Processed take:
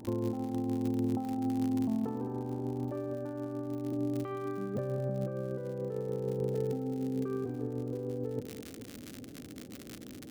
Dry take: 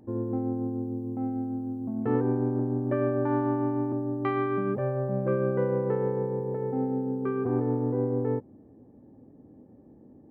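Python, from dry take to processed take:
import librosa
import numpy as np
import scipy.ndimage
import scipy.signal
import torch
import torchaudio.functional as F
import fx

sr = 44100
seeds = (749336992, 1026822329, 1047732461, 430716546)

y = fx.peak_eq(x, sr, hz=2000.0, db=-8.5, octaves=0.68)
y = fx.dmg_crackle(y, sr, seeds[0], per_s=78.0, level_db=-34.0)
y = fx.over_compress(y, sr, threshold_db=-34.0, ratio=-1.0)
y = fx.peak_eq(y, sr, hz=910.0, db=fx.steps((0.0, 7.0), (2.96, -10.5)), octaves=0.4)
y = fx.echo_feedback(y, sr, ms=213, feedback_pct=40, wet_db=-11)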